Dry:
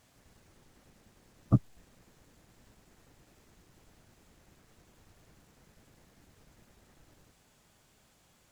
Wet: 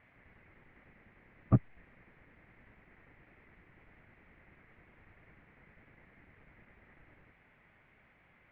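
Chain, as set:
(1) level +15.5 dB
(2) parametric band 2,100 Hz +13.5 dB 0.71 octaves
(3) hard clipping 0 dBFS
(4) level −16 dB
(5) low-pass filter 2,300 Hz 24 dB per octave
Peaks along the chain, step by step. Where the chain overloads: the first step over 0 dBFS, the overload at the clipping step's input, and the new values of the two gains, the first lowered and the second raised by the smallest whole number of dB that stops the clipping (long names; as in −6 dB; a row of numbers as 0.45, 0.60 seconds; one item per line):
+5.0, +5.0, 0.0, −16.0, −15.5 dBFS
step 1, 5.0 dB
step 1 +10.5 dB, step 4 −11 dB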